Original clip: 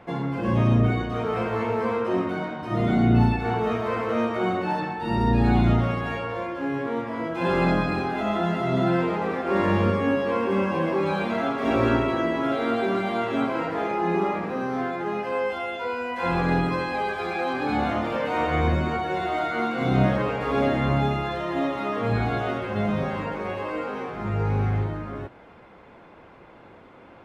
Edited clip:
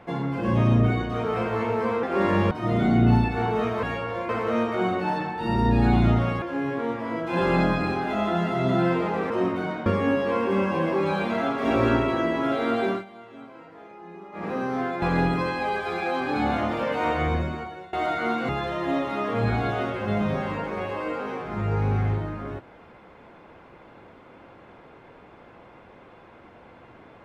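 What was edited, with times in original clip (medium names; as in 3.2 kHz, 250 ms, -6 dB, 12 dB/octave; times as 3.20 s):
2.03–2.59 s: swap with 9.38–9.86 s
6.04–6.50 s: move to 3.91 s
12.89–14.48 s: dip -19 dB, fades 0.16 s
15.02–16.35 s: delete
18.41–19.26 s: fade out, to -22.5 dB
19.82–21.17 s: delete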